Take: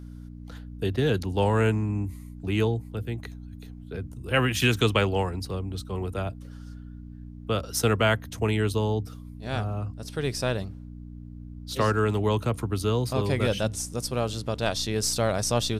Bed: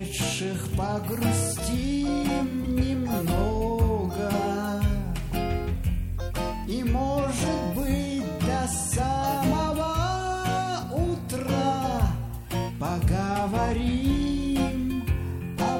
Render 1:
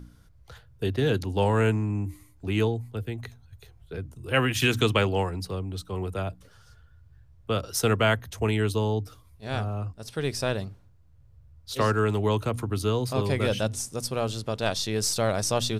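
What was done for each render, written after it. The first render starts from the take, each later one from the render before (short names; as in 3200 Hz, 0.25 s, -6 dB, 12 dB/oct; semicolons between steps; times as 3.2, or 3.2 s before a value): de-hum 60 Hz, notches 5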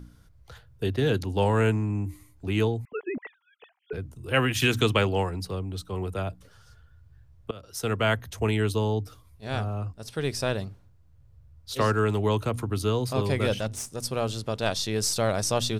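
2.85–3.93 sine-wave speech; 7.51–8.21 fade in, from -22 dB; 13.54–14.02 tube stage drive 23 dB, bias 0.6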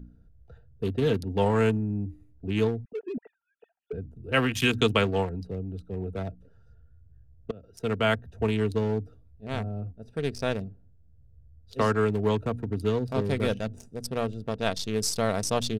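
Wiener smoothing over 41 samples; comb 4.4 ms, depth 32%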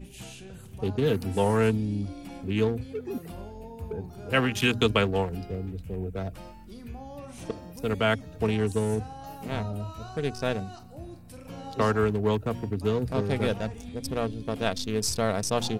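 add bed -16 dB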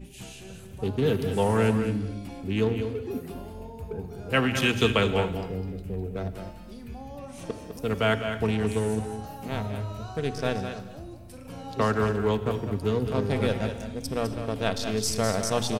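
on a send: echo 0.205 s -8.5 dB; on the sum: non-linear reverb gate 0.3 s flat, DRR 11 dB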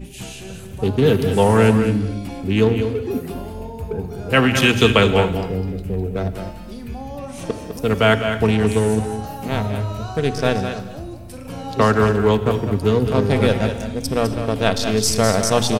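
gain +9 dB; limiter -1 dBFS, peak gain reduction 1.5 dB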